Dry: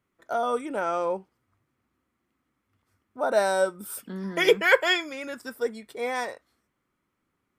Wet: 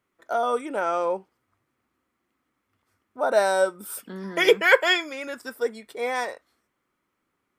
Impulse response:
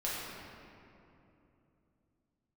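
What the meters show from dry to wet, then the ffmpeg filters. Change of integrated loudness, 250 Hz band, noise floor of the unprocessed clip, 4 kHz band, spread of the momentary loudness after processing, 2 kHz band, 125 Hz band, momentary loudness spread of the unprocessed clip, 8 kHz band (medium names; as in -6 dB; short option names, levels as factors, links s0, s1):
+2.5 dB, 0.0 dB, -79 dBFS, +2.0 dB, 16 LU, +2.5 dB, no reading, 15 LU, +1.5 dB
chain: -af "bass=f=250:g=-7,treble=f=4000:g=-1,volume=1.33"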